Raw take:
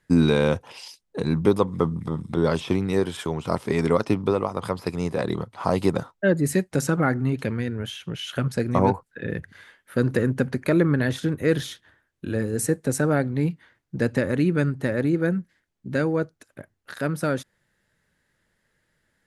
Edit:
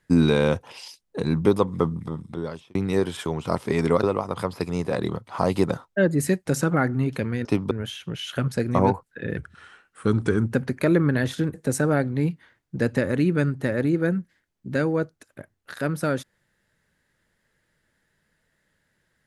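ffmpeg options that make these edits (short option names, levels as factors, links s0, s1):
-filter_complex "[0:a]asplit=8[s0][s1][s2][s3][s4][s5][s6][s7];[s0]atrim=end=2.75,asetpts=PTS-STARTPTS,afade=t=out:st=1.82:d=0.93[s8];[s1]atrim=start=2.75:end=4.032,asetpts=PTS-STARTPTS,afade=t=in:d=0.004:c=hsin[s9];[s2]atrim=start=4.288:end=7.712[s10];[s3]atrim=start=4.028:end=4.292[s11];[s4]atrim=start=7.708:end=9.374[s12];[s5]atrim=start=9.37:end=10.38,asetpts=PTS-STARTPTS,asetrate=38367,aresample=44100[s13];[s6]atrim=start=10.376:end=11.392[s14];[s7]atrim=start=12.738[s15];[s8][s9]concat=n=2:v=0:a=1[s16];[s16][s10]acrossfade=d=0.004:c1=hsin:c2=hsin[s17];[s17][s11]acrossfade=d=0.004:c1=hsin:c2=hsin[s18];[s18][s12]acrossfade=d=0.004:c1=hsin:c2=hsin[s19];[s19][s13]acrossfade=d=0.004:c1=hsin:c2=hsin[s20];[s20][s14]acrossfade=d=0.004:c1=hsin:c2=hsin[s21];[s21][s15]acrossfade=d=0.004:c1=hsin:c2=hsin"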